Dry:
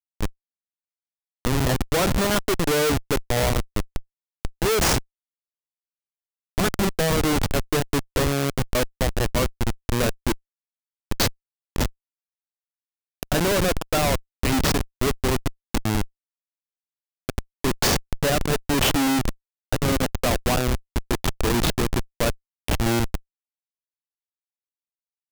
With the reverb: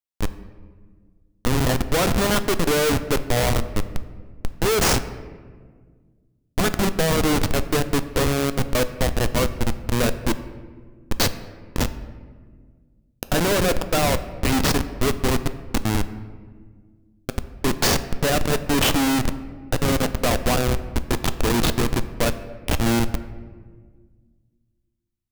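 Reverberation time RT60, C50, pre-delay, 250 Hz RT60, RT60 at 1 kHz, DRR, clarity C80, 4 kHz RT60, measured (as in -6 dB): 1.7 s, 13.0 dB, 4 ms, 2.4 s, 1.4 s, 11.0 dB, 14.5 dB, 0.90 s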